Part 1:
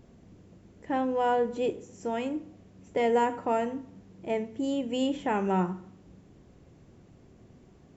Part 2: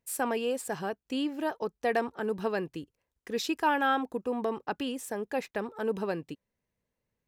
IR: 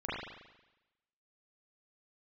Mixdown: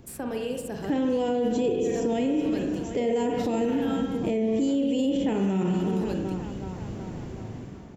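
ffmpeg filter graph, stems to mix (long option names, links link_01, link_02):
-filter_complex "[0:a]dynaudnorm=framelen=370:gausssize=5:maxgain=12.5dB,volume=2.5dB,asplit=4[link_01][link_02][link_03][link_04];[link_02]volume=-5.5dB[link_05];[link_03]volume=-13.5dB[link_06];[1:a]volume=0dB,asplit=2[link_07][link_08];[link_08]volume=-5.5dB[link_09];[link_04]apad=whole_len=325106[link_10];[link_07][link_10]sidechaincompress=threshold=-24dB:ratio=8:attack=16:release=323[link_11];[2:a]atrim=start_sample=2205[link_12];[link_05][link_09]amix=inputs=2:normalize=0[link_13];[link_13][link_12]afir=irnorm=-1:irlink=0[link_14];[link_06]aecho=0:1:374|748|1122|1496|1870|2244|2618:1|0.49|0.24|0.118|0.0576|0.0282|0.0138[link_15];[link_01][link_11][link_14][link_15]amix=inputs=4:normalize=0,acrossover=split=440|2800[link_16][link_17][link_18];[link_16]acompressor=threshold=-20dB:ratio=4[link_19];[link_17]acompressor=threshold=-43dB:ratio=4[link_20];[link_18]acompressor=threshold=-42dB:ratio=4[link_21];[link_19][link_20][link_21]amix=inputs=3:normalize=0,alimiter=limit=-18dB:level=0:latency=1:release=23"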